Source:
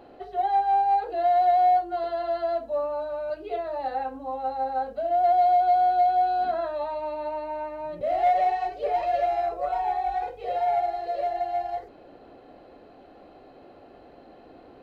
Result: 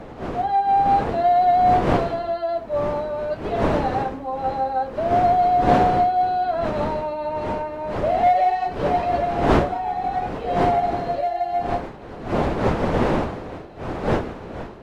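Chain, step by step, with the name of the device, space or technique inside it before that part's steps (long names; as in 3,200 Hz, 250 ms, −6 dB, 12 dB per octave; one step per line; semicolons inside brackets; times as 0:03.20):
smartphone video outdoors (wind on the microphone 590 Hz −29 dBFS; automatic gain control gain up to 6.5 dB; level −2 dB; AAC 64 kbit/s 44,100 Hz)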